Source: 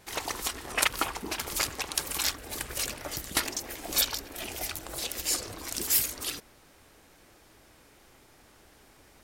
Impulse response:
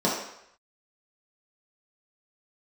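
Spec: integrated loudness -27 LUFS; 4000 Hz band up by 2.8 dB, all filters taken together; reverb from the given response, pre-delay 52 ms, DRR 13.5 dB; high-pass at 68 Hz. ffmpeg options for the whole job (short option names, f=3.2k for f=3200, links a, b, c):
-filter_complex "[0:a]highpass=68,equalizer=f=4k:t=o:g=3.5,asplit=2[a][b];[1:a]atrim=start_sample=2205,adelay=52[c];[b][c]afir=irnorm=-1:irlink=0,volume=-28dB[d];[a][d]amix=inputs=2:normalize=0,volume=2dB"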